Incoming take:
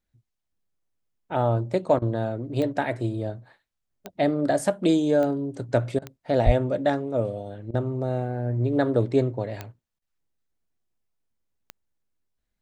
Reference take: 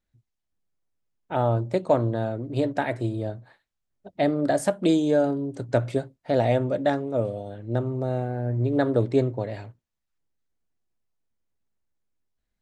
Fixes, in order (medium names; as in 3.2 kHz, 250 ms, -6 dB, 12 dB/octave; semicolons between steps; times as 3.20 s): de-click; 6.45–6.57 s: high-pass 140 Hz 24 dB/octave; interpolate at 1.99/5.99/7.71/9.99 s, 28 ms